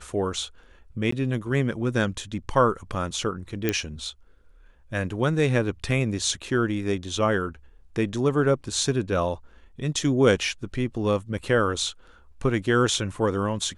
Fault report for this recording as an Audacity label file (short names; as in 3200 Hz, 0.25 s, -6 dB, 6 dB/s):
1.110000	1.120000	gap 14 ms
3.690000	3.690000	pop -9 dBFS